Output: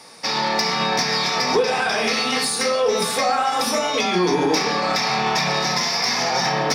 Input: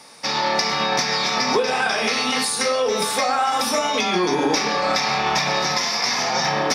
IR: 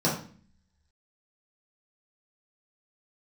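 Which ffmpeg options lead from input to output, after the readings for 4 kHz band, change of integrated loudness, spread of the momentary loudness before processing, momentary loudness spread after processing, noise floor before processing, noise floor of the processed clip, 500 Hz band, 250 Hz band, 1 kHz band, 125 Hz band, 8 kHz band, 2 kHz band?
+0.5 dB, +0.5 dB, 1 LU, 1 LU, -24 dBFS, -24 dBFS, +1.0 dB, +1.0 dB, 0.0 dB, +3.0 dB, -0.5 dB, 0.0 dB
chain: -filter_complex "[0:a]asoftclip=type=tanh:threshold=0.266,asplit=2[s0][s1];[1:a]atrim=start_sample=2205[s2];[s1][s2]afir=irnorm=-1:irlink=0,volume=0.0794[s3];[s0][s3]amix=inputs=2:normalize=0"

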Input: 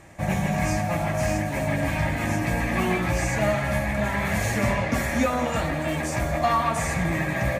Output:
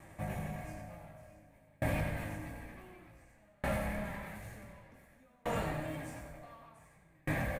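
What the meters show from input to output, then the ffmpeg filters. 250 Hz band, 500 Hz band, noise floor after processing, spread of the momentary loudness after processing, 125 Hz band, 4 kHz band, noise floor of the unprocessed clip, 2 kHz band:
-16.5 dB, -15.5 dB, -65 dBFS, 20 LU, -15.5 dB, -18.0 dB, -28 dBFS, -17.0 dB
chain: -filter_complex "[0:a]aemphasis=mode=reproduction:type=cd,alimiter=limit=0.133:level=0:latency=1:release=135,asoftclip=type=tanh:threshold=0.0944,aexciter=amount=4.5:drive=4.1:freq=8600,asplit=2[s0][s1];[s1]adelay=19,volume=0.531[s2];[s0][s2]amix=inputs=2:normalize=0,asplit=8[s3][s4][s5][s6][s7][s8][s9][s10];[s4]adelay=93,afreqshift=-33,volume=0.562[s11];[s5]adelay=186,afreqshift=-66,volume=0.316[s12];[s6]adelay=279,afreqshift=-99,volume=0.176[s13];[s7]adelay=372,afreqshift=-132,volume=0.0989[s14];[s8]adelay=465,afreqshift=-165,volume=0.0556[s15];[s9]adelay=558,afreqshift=-198,volume=0.0309[s16];[s10]adelay=651,afreqshift=-231,volume=0.0174[s17];[s3][s11][s12][s13][s14][s15][s16][s17]amix=inputs=8:normalize=0,aeval=exprs='val(0)*pow(10,-37*if(lt(mod(0.55*n/s,1),2*abs(0.55)/1000),1-mod(0.55*n/s,1)/(2*abs(0.55)/1000),(mod(0.55*n/s,1)-2*abs(0.55)/1000)/(1-2*abs(0.55)/1000))/20)':c=same,volume=0.501"

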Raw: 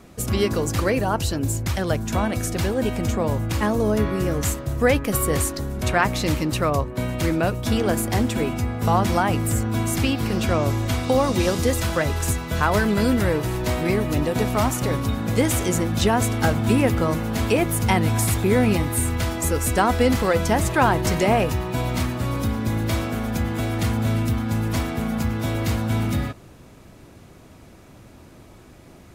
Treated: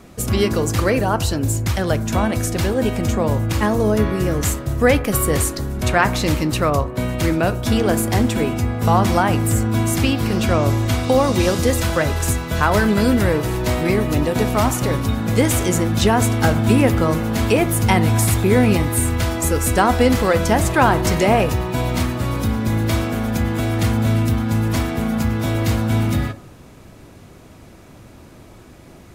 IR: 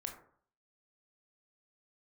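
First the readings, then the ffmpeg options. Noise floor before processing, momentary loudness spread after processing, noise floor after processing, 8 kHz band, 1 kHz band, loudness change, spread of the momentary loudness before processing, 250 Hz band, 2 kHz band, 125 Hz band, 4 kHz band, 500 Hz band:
-47 dBFS, 5 LU, -43 dBFS, +3.5 dB, +3.5 dB, +4.0 dB, 5 LU, +4.0 dB, +3.5 dB, +4.0 dB, +3.5 dB, +3.5 dB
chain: -filter_complex "[0:a]asplit=2[s0][s1];[1:a]atrim=start_sample=2205[s2];[s1][s2]afir=irnorm=-1:irlink=0,volume=0.501[s3];[s0][s3]amix=inputs=2:normalize=0,volume=1.12"

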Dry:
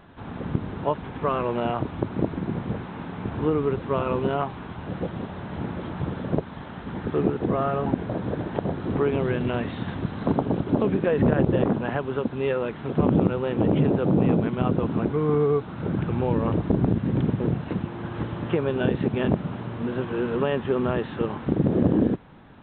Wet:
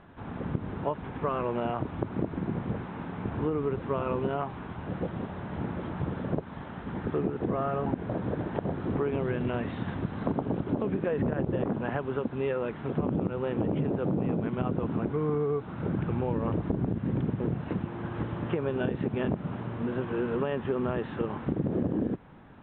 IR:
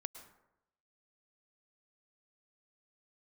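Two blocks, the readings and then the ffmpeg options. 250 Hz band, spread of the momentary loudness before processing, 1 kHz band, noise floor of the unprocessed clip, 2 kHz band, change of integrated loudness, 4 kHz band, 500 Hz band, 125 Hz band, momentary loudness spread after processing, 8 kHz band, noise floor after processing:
-6.0 dB, 11 LU, -5.0 dB, -38 dBFS, -5.5 dB, -6.0 dB, -8.0 dB, -5.5 dB, -5.5 dB, 6 LU, no reading, -42 dBFS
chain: -af "lowpass=2900,acompressor=threshold=0.0794:ratio=6,volume=0.75"

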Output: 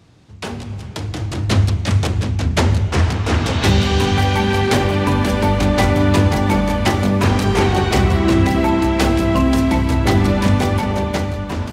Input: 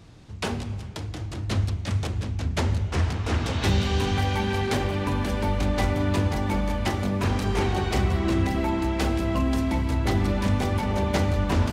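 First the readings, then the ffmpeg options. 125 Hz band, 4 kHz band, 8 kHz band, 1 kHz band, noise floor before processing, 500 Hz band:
+8.0 dB, +9.5 dB, +9.5 dB, +9.5 dB, -35 dBFS, +9.5 dB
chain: -af "highpass=68,dynaudnorm=f=140:g=13:m=3.98"

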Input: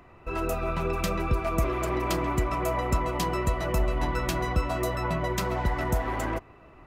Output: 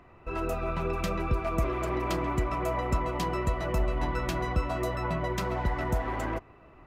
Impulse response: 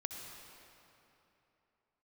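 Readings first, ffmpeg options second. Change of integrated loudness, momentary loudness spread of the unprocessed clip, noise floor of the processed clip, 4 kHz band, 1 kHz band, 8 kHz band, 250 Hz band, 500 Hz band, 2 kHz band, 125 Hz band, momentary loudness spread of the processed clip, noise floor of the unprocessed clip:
-2.0 dB, 3 LU, -55 dBFS, -4.0 dB, -2.0 dB, -7.0 dB, -2.0 dB, -2.0 dB, -2.5 dB, -2.0 dB, 3 LU, -52 dBFS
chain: -af "highshelf=f=6000:g=-8,volume=0.794"

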